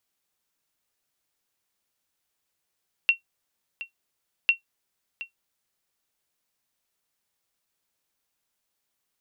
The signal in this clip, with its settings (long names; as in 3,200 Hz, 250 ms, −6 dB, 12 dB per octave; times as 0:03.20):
ping with an echo 2,730 Hz, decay 0.12 s, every 1.40 s, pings 2, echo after 0.72 s, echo −16 dB −10 dBFS